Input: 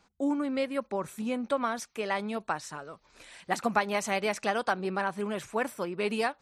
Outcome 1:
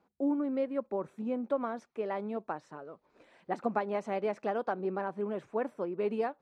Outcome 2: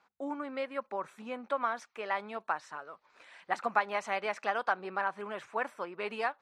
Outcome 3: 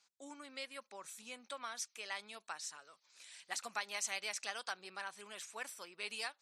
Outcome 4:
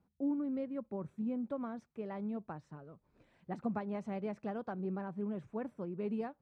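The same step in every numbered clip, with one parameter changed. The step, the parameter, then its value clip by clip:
resonant band-pass, frequency: 390, 1,200, 6,400, 130 Hertz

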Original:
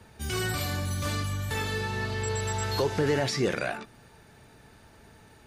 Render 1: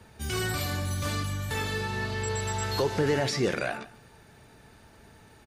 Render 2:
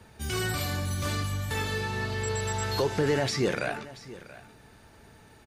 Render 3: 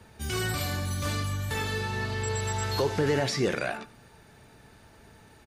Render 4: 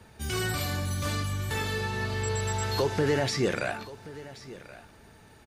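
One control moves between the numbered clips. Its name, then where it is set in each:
single-tap delay, delay time: 149, 681, 90, 1,077 milliseconds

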